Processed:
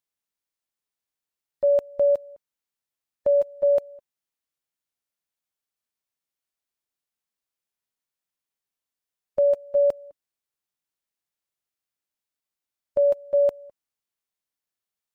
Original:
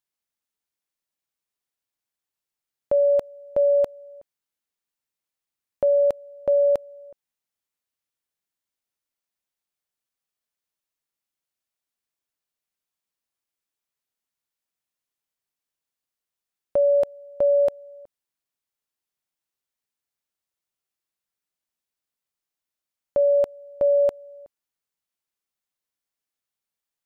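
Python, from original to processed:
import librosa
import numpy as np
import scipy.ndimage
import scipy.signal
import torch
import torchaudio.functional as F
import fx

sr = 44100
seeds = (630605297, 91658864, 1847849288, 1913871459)

y = fx.stretch_vocoder(x, sr, factor=0.56)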